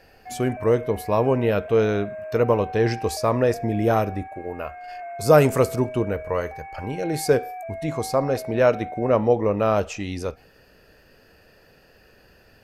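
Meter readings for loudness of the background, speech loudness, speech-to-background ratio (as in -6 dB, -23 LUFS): -36.0 LUFS, -22.5 LUFS, 13.5 dB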